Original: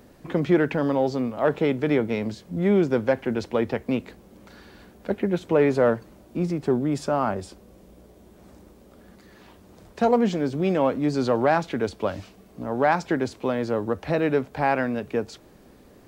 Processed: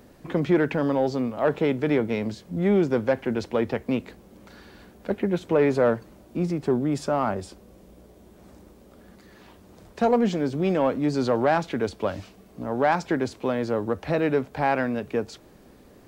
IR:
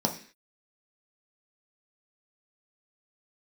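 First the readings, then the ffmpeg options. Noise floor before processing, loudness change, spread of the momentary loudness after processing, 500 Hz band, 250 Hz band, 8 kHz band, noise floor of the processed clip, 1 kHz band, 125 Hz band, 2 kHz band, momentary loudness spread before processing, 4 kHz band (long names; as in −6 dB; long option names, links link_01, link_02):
−52 dBFS, −0.5 dB, 9 LU, −0.5 dB, −0.5 dB, 0.0 dB, −52 dBFS, −1.0 dB, −0.5 dB, −1.0 dB, 9 LU, −0.5 dB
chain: -af "acontrast=78,volume=-7dB"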